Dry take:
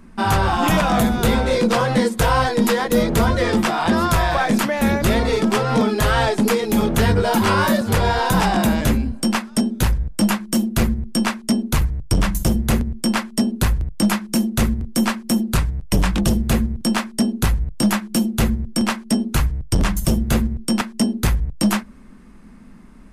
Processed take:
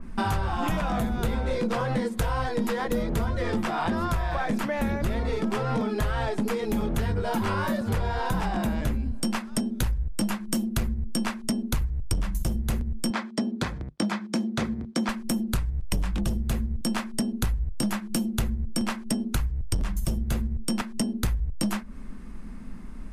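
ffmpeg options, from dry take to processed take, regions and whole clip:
-filter_complex "[0:a]asettb=1/sr,asplit=3[a][b][c];[a]atrim=end=13.104[d];[b]atrim=start=13.1:end=15.09,asetpts=PTS-STARTPTS,afade=t=in:d=0.004:c=qsin,afade=t=out:st=1.986:d=0.004:c=qsin,highpass=190,lowpass=4.9k,bandreject=f=2.8k:w=10[e];[c]atrim=start=15.086[f];[d][e]acrossfade=d=0.004:c1=hsin:c2=qsin[g];[g][f]acrossfade=d=0.004:c1=qsin:c2=hsin,lowshelf=f=68:g=11,acompressor=threshold=-24dB:ratio=6,adynamicequalizer=threshold=0.00562:dfrequency=3000:dqfactor=0.7:tfrequency=3000:tqfactor=0.7:attack=5:release=100:ratio=0.375:range=3:mode=cutabove:tftype=highshelf"

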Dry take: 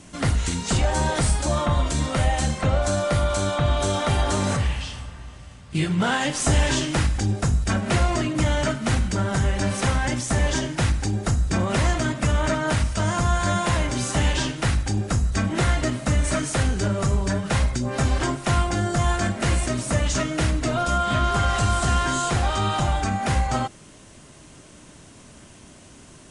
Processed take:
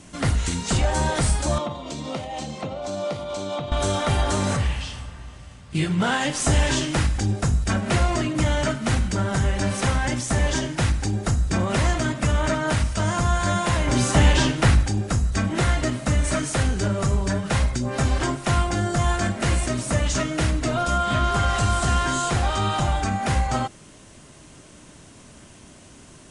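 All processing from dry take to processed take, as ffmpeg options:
-filter_complex "[0:a]asettb=1/sr,asplit=3[a][b][c];[a]atrim=end=1.584[d];[b]atrim=start=1.58:end=3.72,asetpts=PTS-STARTPTS,afade=t=in:d=0.004:c=qsin,afade=t=out:st=2.136:d=0.004:c=qsin,equalizer=f=1.6k:w=1.8:g=-12,acompressor=threshold=-22dB:ratio=6:attack=3.2:release=140:knee=1:detection=peak,highpass=180,lowpass=5.2k[e];[c]atrim=start=3.716[f];[d][e]acrossfade=d=0.004:c1=hsin:c2=qsin[g];[g][f]acrossfade=d=0.004:c1=qsin:c2=hsin,asettb=1/sr,asplit=3[h][i][j];[h]atrim=end=13.874[k];[i]atrim=start=13.87:end=14.86,asetpts=PTS-STARTPTS,afade=t=in:d=0.004:c=qsin,afade=t=out:st=0.986:d=0.004:c=qsin,highshelf=f=2.6k:g=-4,acontrast=49[l];[j]atrim=start=14.856[m];[k][l]acrossfade=d=0.004:c1=hsin:c2=qsin[n];[n][m]acrossfade=d=0.004:c1=qsin:c2=hsin"

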